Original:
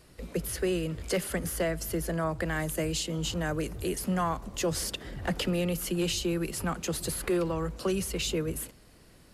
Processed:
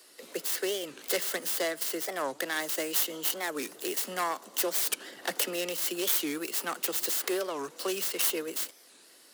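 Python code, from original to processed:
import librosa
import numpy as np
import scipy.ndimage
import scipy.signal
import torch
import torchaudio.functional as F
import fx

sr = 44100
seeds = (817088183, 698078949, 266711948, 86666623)

y = fx.tracing_dist(x, sr, depth_ms=0.26)
y = scipy.signal.sosfilt(scipy.signal.butter(4, 300.0, 'highpass', fs=sr, output='sos'), y)
y = fx.high_shelf(y, sr, hz=2000.0, db=11.5)
y = fx.notch(y, sr, hz=2400.0, q=12.0)
y = fx.record_warp(y, sr, rpm=45.0, depth_cents=250.0)
y = y * 10.0 ** (-3.0 / 20.0)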